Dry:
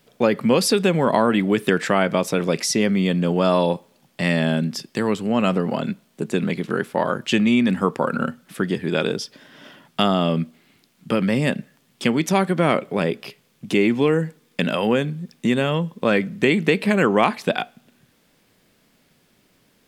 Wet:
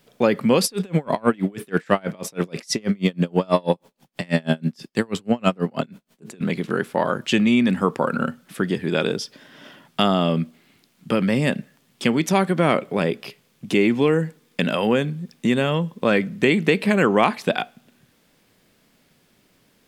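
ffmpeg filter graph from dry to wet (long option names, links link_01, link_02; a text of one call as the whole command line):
ffmpeg -i in.wav -filter_complex "[0:a]asettb=1/sr,asplit=3[link_01][link_02][link_03];[link_01]atrim=end=0.644[link_04];[link_02]atrim=start=0.64:end=6.41,asetpts=PTS-STARTPTS,afade=type=in:duration=0.004:curve=qsin,afade=type=out:start_time=5.766:duration=0.004:curve=qsin,acontrast=28,aeval=exprs='val(0)*pow(10,-34*(0.5-0.5*cos(2*PI*6.2*n/s))/20)':channel_layout=same[link_05];[link_03]atrim=start=6.406[link_06];[link_04][link_05]acrossfade=duration=0.004:curve1=hsin:curve2=qsin[link_07];[link_07][link_06]acrossfade=duration=0.004:curve1=qsin:curve2=hsin" out.wav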